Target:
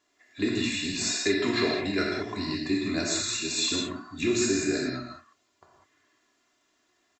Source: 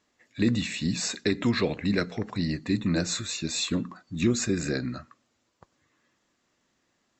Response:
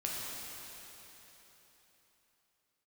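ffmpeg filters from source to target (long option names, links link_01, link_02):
-filter_complex "[0:a]lowshelf=frequency=190:gain=-11.5,aecho=1:1:2.9:0.63[link_01];[1:a]atrim=start_sample=2205,afade=type=out:start_time=0.26:duration=0.01,atrim=end_sample=11907[link_02];[link_01][link_02]afir=irnorm=-1:irlink=0"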